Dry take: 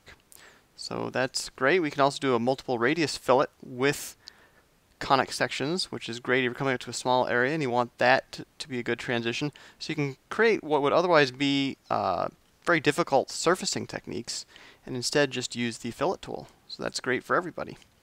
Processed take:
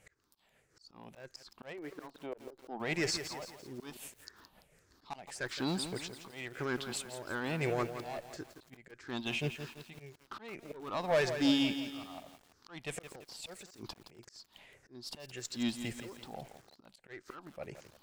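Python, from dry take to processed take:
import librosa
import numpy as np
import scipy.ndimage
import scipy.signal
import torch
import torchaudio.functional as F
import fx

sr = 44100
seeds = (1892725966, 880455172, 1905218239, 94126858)

y = fx.spec_ripple(x, sr, per_octave=0.5, drift_hz=-1.7, depth_db=12)
y = fx.bandpass_q(y, sr, hz=500.0, q=0.83, at=(1.72, 2.79), fade=0.02)
y = fx.over_compress(y, sr, threshold_db=-35.0, ratio=-0.5, at=(13.55, 14.19))
y = fx.tube_stage(y, sr, drive_db=17.0, bias=0.25)
y = fx.tremolo_shape(y, sr, shape='triangle', hz=5.5, depth_pct=45)
y = fx.auto_swell(y, sr, attack_ms=584.0)
y = fx.echo_crushed(y, sr, ms=169, feedback_pct=55, bits=8, wet_db=-9)
y = y * librosa.db_to_amplitude(-2.5)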